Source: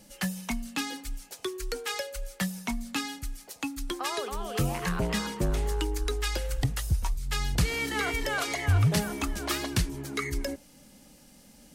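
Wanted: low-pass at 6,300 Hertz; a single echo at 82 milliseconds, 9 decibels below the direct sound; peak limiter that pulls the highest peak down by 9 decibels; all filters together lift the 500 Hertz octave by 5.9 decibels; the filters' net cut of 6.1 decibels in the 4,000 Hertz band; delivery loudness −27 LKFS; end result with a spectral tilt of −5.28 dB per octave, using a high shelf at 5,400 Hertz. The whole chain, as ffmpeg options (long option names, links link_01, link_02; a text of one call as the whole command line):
ffmpeg -i in.wav -af "lowpass=6300,equalizer=frequency=500:width_type=o:gain=7.5,equalizer=frequency=4000:width_type=o:gain=-5,highshelf=frequency=5400:gain=-6,alimiter=limit=-23dB:level=0:latency=1,aecho=1:1:82:0.355,volume=6dB" out.wav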